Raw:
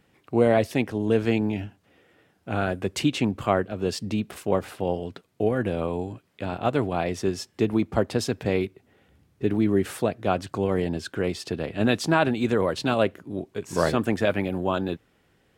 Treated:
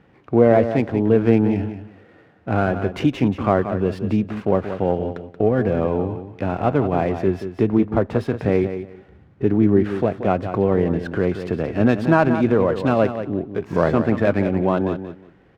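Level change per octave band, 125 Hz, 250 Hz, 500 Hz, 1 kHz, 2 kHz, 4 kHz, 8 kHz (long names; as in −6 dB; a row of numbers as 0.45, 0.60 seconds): +7.0 dB, +6.5 dB, +6.0 dB, +4.5 dB, +2.0 dB, can't be measured, below −10 dB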